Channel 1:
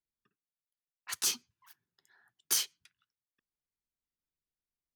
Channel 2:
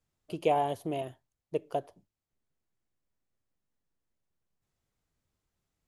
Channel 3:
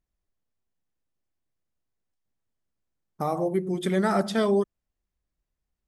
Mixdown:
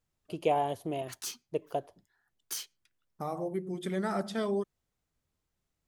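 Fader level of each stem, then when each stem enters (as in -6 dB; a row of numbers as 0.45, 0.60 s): -8.5, -1.0, -8.5 dB; 0.00, 0.00, 0.00 s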